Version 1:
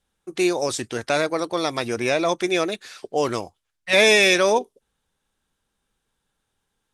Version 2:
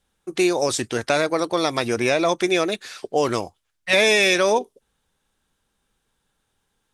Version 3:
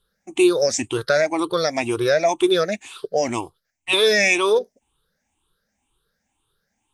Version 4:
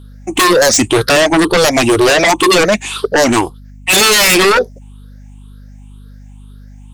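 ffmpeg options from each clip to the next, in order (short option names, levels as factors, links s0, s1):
-af "acompressor=threshold=0.112:ratio=2.5,volume=1.5"
-af "afftfilt=real='re*pow(10,19/40*sin(2*PI*(0.63*log(max(b,1)*sr/1024/100)/log(2)-(2)*(pts-256)/sr)))':imag='im*pow(10,19/40*sin(2*PI*(0.63*log(max(b,1)*sr/1024/100)/log(2)-(2)*(pts-256)/sr)))':win_size=1024:overlap=0.75,volume=0.631"
-af "aeval=exprs='val(0)+0.00282*(sin(2*PI*50*n/s)+sin(2*PI*2*50*n/s)/2+sin(2*PI*3*50*n/s)/3+sin(2*PI*4*50*n/s)/4+sin(2*PI*5*50*n/s)/5)':c=same,aeval=exprs='0.631*sin(PI/2*5.62*val(0)/0.631)':c=same,volume=0.794"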